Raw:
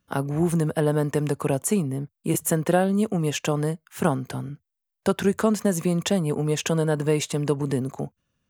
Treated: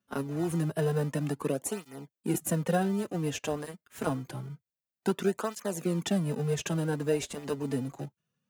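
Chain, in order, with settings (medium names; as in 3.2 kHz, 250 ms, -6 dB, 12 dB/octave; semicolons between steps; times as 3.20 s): high-pass 130 Hz 24 dB/octave; in parallel at -12 dB: sample-rate reducer 1.1 kHz, jitter 0%; on the sum: cancelling through-zero flanger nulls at 0.27 Hz, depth 6.6 ms; trim -5 dB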